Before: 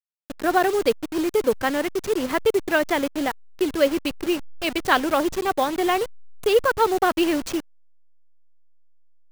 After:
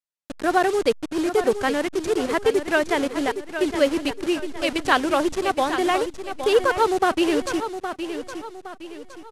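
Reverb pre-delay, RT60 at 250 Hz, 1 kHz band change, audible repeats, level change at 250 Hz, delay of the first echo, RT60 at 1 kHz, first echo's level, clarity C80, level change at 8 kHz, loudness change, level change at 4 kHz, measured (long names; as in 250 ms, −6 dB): no reverb audible, no reverb audible, +0.5 dB, 4, +0.5 dB, 815 ms, no reverb audible, −9.5 dB, no reverb audible, 0.0 dB, 0.0 dB, +0.5 dB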